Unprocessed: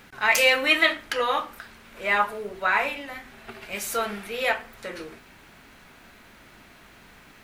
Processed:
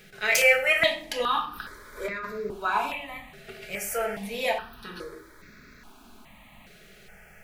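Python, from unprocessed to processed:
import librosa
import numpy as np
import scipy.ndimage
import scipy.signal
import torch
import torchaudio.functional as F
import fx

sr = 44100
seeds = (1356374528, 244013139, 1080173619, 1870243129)

y = fx.over_compress(x, sr, threshold_db=-29.0, ratio=-1.0, at=(1.54, 2.24), fade=0.02)
y = fx.room_shoebox(y, sr, seeds[0], volume_m3=720.0, walls='furnished', distance_m=1.4)
y = fx.phaser_held(y, sr, hz=2.4, low_hz=260.0, high_hz=3000.0)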